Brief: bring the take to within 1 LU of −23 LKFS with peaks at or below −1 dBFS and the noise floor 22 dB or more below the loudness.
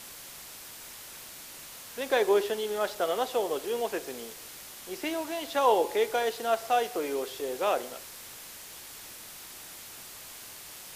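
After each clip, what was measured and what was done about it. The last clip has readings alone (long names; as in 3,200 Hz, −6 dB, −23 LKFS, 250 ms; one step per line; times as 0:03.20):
background noise floor −46 dBFS; target noise floor −52 dBFS; integrated loudness −29.5 LKFS; sample peak −11.5 dBFS; target loudness −23.0 LKFS
→ broadband denoise 6 dB, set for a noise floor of −46 dBFS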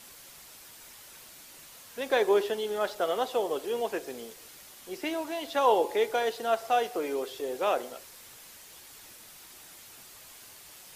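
background noise floor −51 dBFS; integrated loudness −29.0 LKFS; sample peak −11.5 dBFS; target loudness −23.0 LKFS
→ level +6 dB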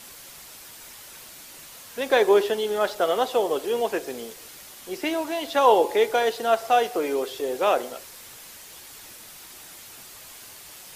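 integrated loudness −23.0 LKFS; sample peak −5.5 dBFS; background noise floor −45 dBFS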